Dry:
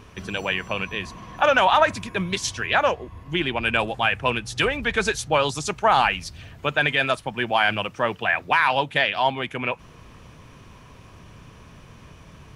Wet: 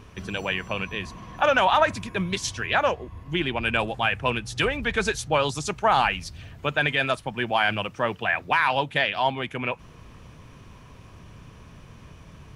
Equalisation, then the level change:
low-shelf EQ 240 Hz +3.5 dB
−2.5 dB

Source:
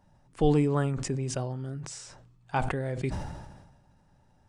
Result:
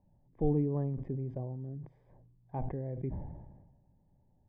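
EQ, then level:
moving average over 32 samples
high-frequency loss of the air 490 metres
−4.5 dB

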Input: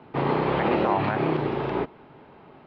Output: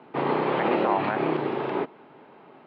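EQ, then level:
band-pass filter 210–4,500 Hz
0.0 dB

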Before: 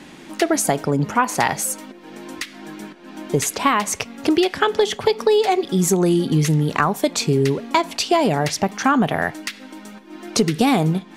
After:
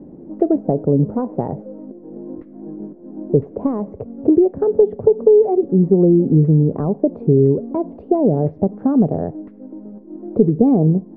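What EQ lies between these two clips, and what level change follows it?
Chebyshev low-pass filter 520 Hz, order 3
+5.5 dB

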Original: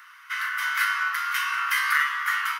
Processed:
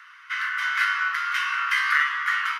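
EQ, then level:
high-pass filter 1,100 Hz 12 dB per octave
head-to-tape spacing loss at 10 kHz 22 dB
spectral tilt +2 dB per octave
+4.5 dB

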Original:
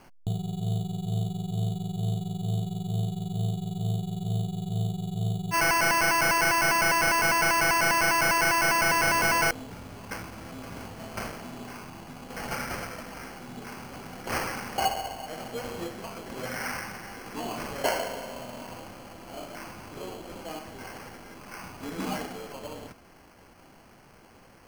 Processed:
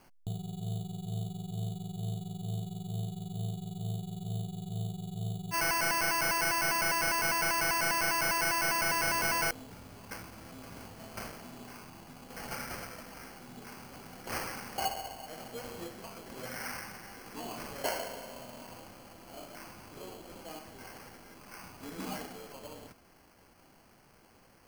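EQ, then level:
parametric band 4,700 Hz +2.5 dB 0.23 octaves
high-shelf EQ 7,900 Hz +7 dB
−7.5 dB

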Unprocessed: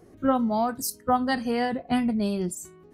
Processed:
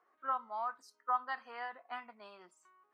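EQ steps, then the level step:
four-pole ladder band-pass 1,300 Hz, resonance 55%
+1.0 dB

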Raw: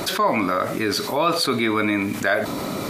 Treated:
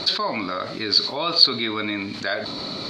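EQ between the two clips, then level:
low-pass with resonance 4,300 Hz, resonance Q 9.2
−6.5 dB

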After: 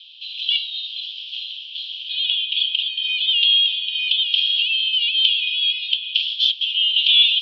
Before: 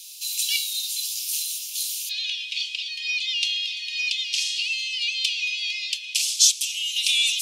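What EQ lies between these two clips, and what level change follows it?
low-pass with resonance 3,200 Hz, resonance Q 9
high-frequency loss of the air 190 metres
phaser with its sweep stopped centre 2,000 Hz, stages 6
−1.0 dB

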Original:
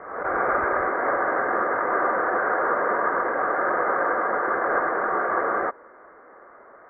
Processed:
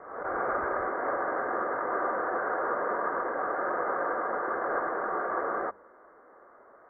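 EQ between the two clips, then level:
low-pass filter 1,600 Hz 12 dB per octave
mains-hum notches 50/100/150/200 Hz
−6.0 dB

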